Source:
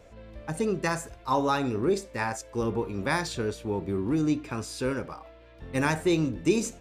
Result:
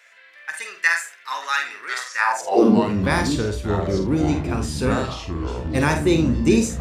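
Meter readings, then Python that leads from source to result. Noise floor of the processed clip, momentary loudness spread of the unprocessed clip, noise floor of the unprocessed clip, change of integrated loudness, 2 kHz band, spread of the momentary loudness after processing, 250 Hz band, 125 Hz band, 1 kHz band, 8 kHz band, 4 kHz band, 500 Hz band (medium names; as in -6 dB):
-49 dBFS, 9 LU, -51 dBFS, +7.5 dB, +11.0 dB, 11 LU, +8.0 dB, +9.0 dB, +6.0 dB, +6.5 dB, +7.5 dB, +6.0 dB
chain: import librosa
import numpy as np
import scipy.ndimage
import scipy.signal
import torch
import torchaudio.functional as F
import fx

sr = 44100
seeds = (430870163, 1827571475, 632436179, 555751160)

y = fx.echo_pitch(x, sr, ms=771, semitones=-5, count=3, db_per_echo=-6.0)
y = fx.room_early_taps(y, sr, ms=(48, 78), db=(-7.0, -15.0))
y = fx.filter_sweep_highpass(y, sr, from_hz=1800.0, to_hz=61.0, start_s=2.13, end_s=3.09, q=3.8)
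y = y * librosa.db_to_amplitude(5.0)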